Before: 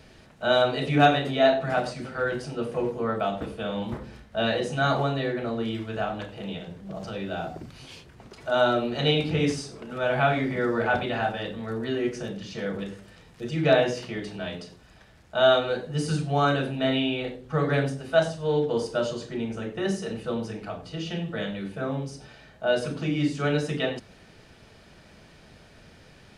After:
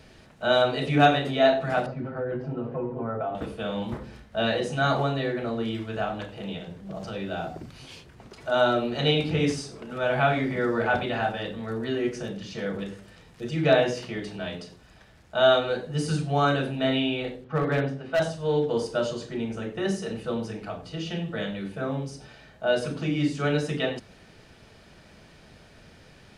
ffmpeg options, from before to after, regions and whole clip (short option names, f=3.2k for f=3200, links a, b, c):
-filter_complex "[0:a]asettb=1/sr,asplit=3[a][b][c];[a]atrim=end=1.864[d];[b]atrim=start=1.86:end=3.35,asetpts=PTS-STARTPTS,afade=t=in:d=0.004:c=qsin,afade=t=out:st=1.486:d=0.004:c=qsin,lowpass=1.2k,aecho=1:1:7.5:0.84,atrim=end_sample=65709,acompressor=threshold=-26dB:ratio=4:attack=3.2:release=140:knee=1:detection=peak[e];[c]atrim=start=3.346[f];[d][e]acrossfade=d=0.004:c1=hsin:c2=qsin[g];[g][f]acrossfade=d=0.004:c1=qsin:c2=hsin,asettb=1/sr,asplit=3[h][i][j];[h]atrim=end=17.444[k];[i]atrim=start=17.44:end=18.2,asetpts=PTS-STARTPTS,afade=t=in:d=0.004:c=qsin,afade=t=out:st=0.756:d=0.004:c=qsin,highpass=110,lowpass=3k,asoftclip=type=hard:threshold=-18.5dB[l];[j]atrim=start=18.196[m];[k][l]acrossfade=d=0.004:c1=hsin:c2=qsin[n];[n][m]acrossfade=d=0.004:c1=qsin:c2=hsin"